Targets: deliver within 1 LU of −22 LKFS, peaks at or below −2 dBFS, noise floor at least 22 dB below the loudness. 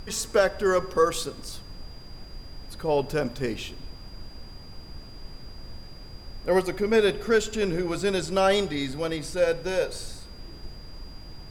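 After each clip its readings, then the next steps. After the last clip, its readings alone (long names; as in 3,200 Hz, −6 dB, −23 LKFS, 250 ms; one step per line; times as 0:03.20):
interfering tone 4,800 Hz; level of the tone −49 dBFS; background noise floor −44 dBFS; target noise floor −48 dBFS; integrated loudness −25.5 LKFS; sample peak −9.5 dBFS; target loudness −22.0 LKFS
→ notch filter 4,800 Hz, Q 30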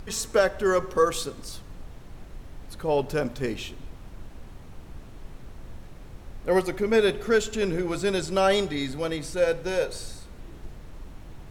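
interfering tone none found; background noise floor −45 dBFS; target noise floor −48 dBFS
→ noise reduction from a noise print 6 dB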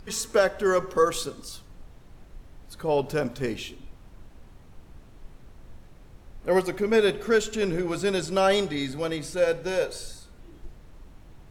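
background noise floor −51 dBFS; integrated loudness −25.5 LKFS; sample peak −9.5 dBFS; target loudness −22.0 LKFS
→ level +3.5 dB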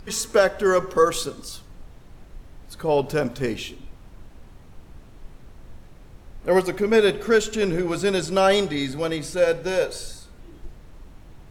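integrated loudness −22.0 LKFS; sample peak −6.0 dBFS; background noise floor −47 dBFS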